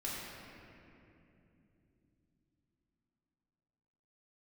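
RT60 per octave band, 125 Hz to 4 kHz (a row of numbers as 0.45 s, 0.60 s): 5.0 s, 4.9 s, 3.6 s, 2.4 s, 2.5 s, 1.7 s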